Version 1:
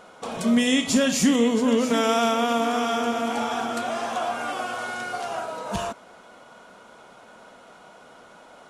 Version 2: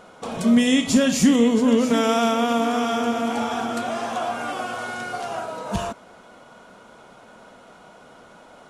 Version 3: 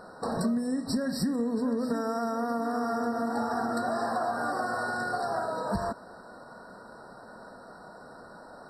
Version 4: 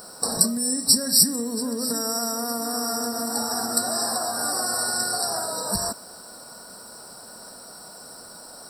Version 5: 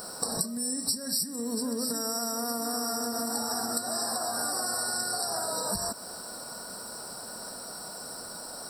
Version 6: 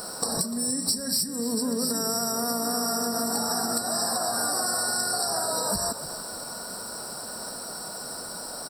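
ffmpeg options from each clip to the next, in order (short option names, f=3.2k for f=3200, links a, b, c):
-af "lowshelf=f=280:g=6.5"
-af "acompressor=threshold=-25dB:ratio=16,afftfilt=real='re*eq(mod(floor(b*sr/1024/1900),2),0)':imag='im*eq(mod(floor(b*sr/1024/1900),2),0)':win_size=1024:overlap=0.75"
-af "aexciter=amount=9.2:drive=9:freq=4.5k,acrusher=bits=8:mix=0:aa=0.000001"
-af "acompressor=threshold=-30dB:ratio=6,volume=2dB"
-filter_complex "[0:a]acrossover=split=400|7800[a][b][c];[c]asoftclip=type=hard:threshold=-31.5dB[d];[a][b][d]amix=inputs=3:normalize=0,asplit=4[e][f][g][h];[f]adelay=296,afreqshift=-54,volume=-13.5dB[i];[g]adelay=592,afreqshift=-108,volume=-23.1dB[j];[h]adelay=888,afreqshift=-162,volume=-32.8dB[k];[e][i][j][k]amix=inputs=4:normalize=0,volume=4dB"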